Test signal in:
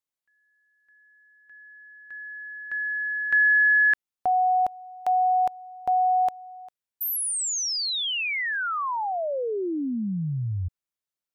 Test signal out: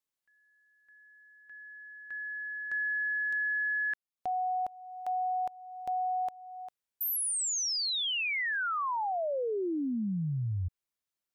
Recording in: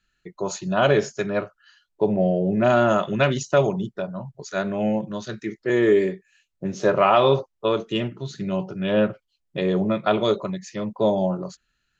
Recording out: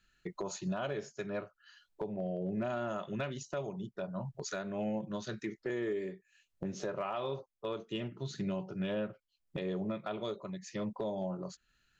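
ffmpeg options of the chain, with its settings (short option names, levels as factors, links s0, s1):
-af "acompressor=threshold=0.0355:ratio=12:attack=0.13:release=509:knee=1:detection=rms"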